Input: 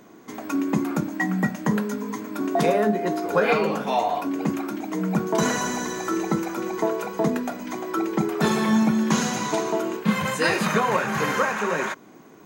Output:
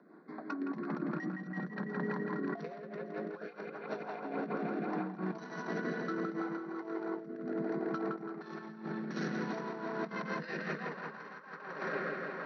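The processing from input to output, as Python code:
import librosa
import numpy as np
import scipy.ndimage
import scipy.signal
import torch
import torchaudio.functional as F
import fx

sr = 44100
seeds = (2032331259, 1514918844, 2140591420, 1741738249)

p1 = fx.wiener(x, sr, points=15)
p2 = scipy.signal.sosfilt(scipy.signal.cheby1(6, 9, 5900.0, 'lowpass', fs=sr, output='sos'), p1)
p3 = p2 + fx.echo_wet_lowpass(p2, sr, ms=166, feedback_pct=78, hz=3200.0, wet_db=-3.0, dry=0)
p4 = fx.rotary_switch(p3, sr, hz=5.0, then_hz=0.65, switch_at_s=3.48)
p5 = fx.over_compress(p4, sr, threshold_db=-34.0, ratio=-0.5)
p6 = scipy.signal.sosfilt(scipy.signal.ellip(4, 1.0, 40, 150.0, 'highpass', fs=sr, output='sos'), p5)
y = p6 * 10.0 ** (-3.5 / 20.0)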